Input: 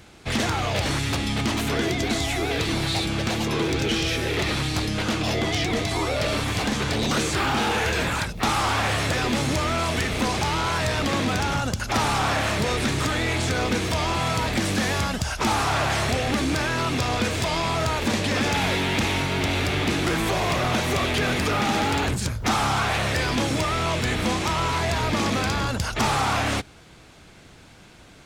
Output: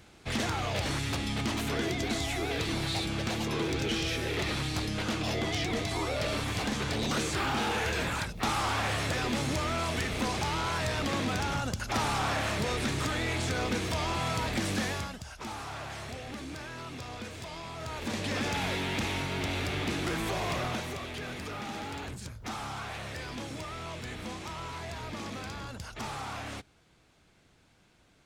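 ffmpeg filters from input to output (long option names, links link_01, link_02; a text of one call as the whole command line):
ffmpeg -i in.wav -af "volume=1.5dB,afade=type=out:start_time=14.79:duration=0.4:silence=0.316228,afade=type=in:start_time=17.76:duration=0.54:silence=0.375837,afade=type=out:start_time=20.59:duration=0.4:silence=0.446684" out.wav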